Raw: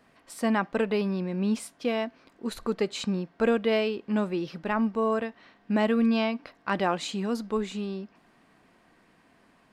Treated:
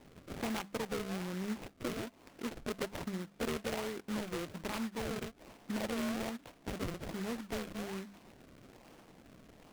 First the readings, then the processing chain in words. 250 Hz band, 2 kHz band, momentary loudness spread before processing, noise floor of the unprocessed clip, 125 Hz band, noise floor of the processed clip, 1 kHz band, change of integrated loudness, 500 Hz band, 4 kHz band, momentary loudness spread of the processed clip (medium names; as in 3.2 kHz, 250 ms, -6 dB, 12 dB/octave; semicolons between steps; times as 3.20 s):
-11.5 dB, -9.5 dB, 11 LU, -62 dBFS, -8.5 dB, -62 dBFS, -12.0 dB, -11.5 dB, -13.0 dB, -8.0 dB, 20 LU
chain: hum notches 50/100/150/200 Hz; harmonic-percussive split percussive +3 dB; compression 2.5:1, threshold -45 dBFS, peak gain reduction 17 dB; decimation with a swept rate 35×, swing 100% 1.2 Hz; hard clipper -32 dBFS, distortion -21 dB; delay time shaken by noise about 1.4 kHz, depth 0.11 ms; trim +2.5 dB